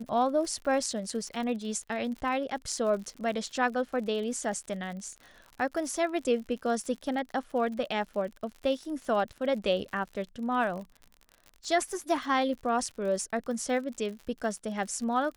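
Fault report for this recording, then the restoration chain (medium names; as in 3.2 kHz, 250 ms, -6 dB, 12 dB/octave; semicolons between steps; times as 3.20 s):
crackle 60 per s -38 dBFS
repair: de-click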